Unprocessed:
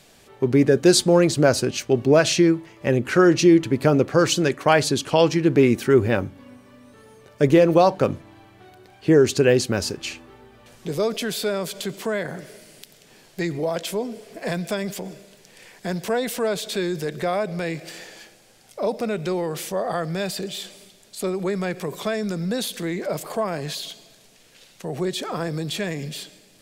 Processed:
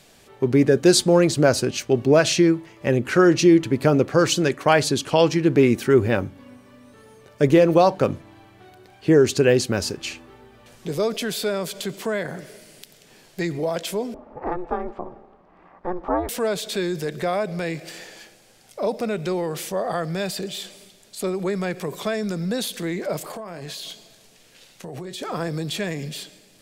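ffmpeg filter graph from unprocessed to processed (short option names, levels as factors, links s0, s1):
-filter_complex "[0:a]asettb=1/sr,asplit=3[s0][s1][s2];[s0]atrim=end=14.144[s3];[s1]atrim=start=14.14:end=16.29,asetpts=PTS-STARTPTS,afade=t=in:d=0.004:c=qsin,afade=t=out:st=2.146:d=0.004:c=qsin,lowpass=f=1000:t=q:w=4,aeval=exprs='val(0)*sin(2*PI*180*n/s)':c=same[s4];[s2]atrim=start=16.286[s5];[s3][s4]acrossfade=d=0.004:c1=hsin:c2=qsin[s6];[s6][s5]acrossfade=d=0.004:c1=qsin:c2=hsin,asettb=1/sr,asplit=3[s7][s8][s9];[s7]atrim=end=23.224[s10];[s8]atrim=start=23.22:end=25.22,asetpts=PTS-STARTPTS,afade=t=in:d=0.004:c=qsin,afade=t=out:st=1.996:d=0.004:c=qsin,asplit=2[s11][s12];[s12]adelay=23,volume=0.282[s13];[s11][s13]amix=inputs=2:normalize=0,atrim=end_sample=88200,acompressor=threshold=0.0316:ratio=12:attack=3.2:release=140:knee=1:detection=peak[s14];[s9]atrim=start=25.216[s15];[s10][s14]acrossfade=d=0.004:c1=hsin:c2=qsin[s16];[s16][s15]acrossfade=d=0.004:c1=qsin:c2=hsin"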